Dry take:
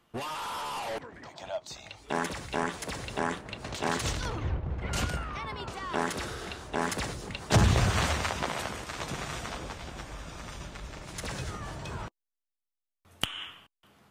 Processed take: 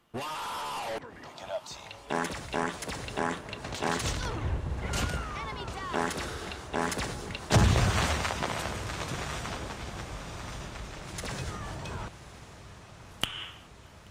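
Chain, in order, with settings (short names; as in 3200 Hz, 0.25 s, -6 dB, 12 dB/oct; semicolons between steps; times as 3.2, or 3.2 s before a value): diffused feedback echo 1.126 s, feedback 68%, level -15.5 dB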